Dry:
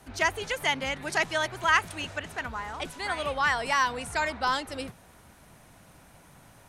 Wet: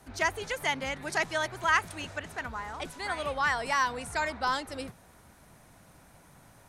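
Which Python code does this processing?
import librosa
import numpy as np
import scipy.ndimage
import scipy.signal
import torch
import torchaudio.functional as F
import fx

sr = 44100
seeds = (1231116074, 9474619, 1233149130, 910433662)

y = fx.peak_eq(x, sr, hz=2900.0, db=-3.5, octaves=0.54)
y = F.gain(torch.from_numpy(y), -2.0).numpy()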